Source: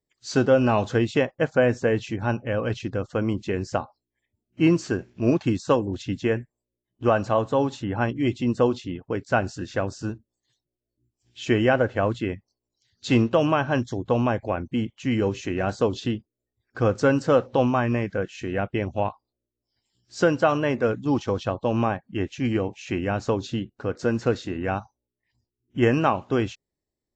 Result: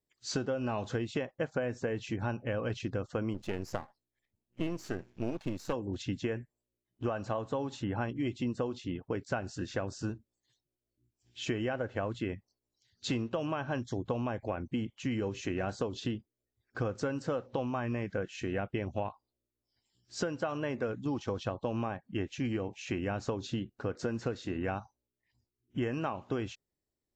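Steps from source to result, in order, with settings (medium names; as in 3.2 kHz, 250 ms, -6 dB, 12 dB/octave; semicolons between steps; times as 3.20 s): 3.34–5.73 s: partial rectifier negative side -12 dB; compression 12:1, threshold -26 dBFS, peak gain reduction 13.5 dB; trim -3.5 dB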